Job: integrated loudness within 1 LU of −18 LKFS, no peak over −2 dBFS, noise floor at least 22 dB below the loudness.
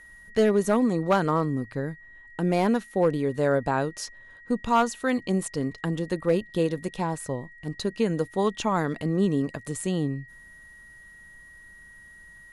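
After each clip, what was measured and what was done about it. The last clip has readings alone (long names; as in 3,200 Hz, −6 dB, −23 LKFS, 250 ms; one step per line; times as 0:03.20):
share of clipped samples 0.2%; peaks flattened at −13.5 dBFS; interfering tone 1,900 Hz; level of the tone −47 dBFS; integrated loudness −26.5 LKFS; sample peak −13.5 dBFS; target loudness −18.0 LKFS
→ clipped peaks rebuilt −13.5 dBFS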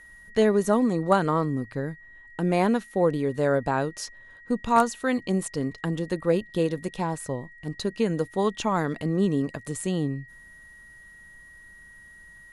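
share of clipped samples 0.0%; interfering tone 1,900 Hz; level of the tone −47 dBFS
→ notch filter 1,900 Hz, Q 30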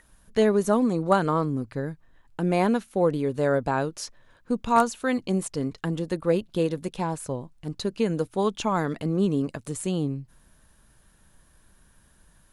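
interfering tone none found; integrated loudness −26.0 LKFS; sample peak −6.0 dBFS; target loudness −18.0 LKFS
→ level +8 dB
brickwall limiter −2 dBFS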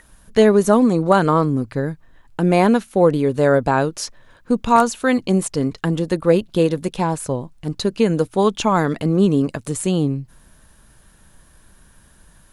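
integrated loudness −18.5 LKFS; sample peak −2.0 dBFS; background noise floor −52 dBFS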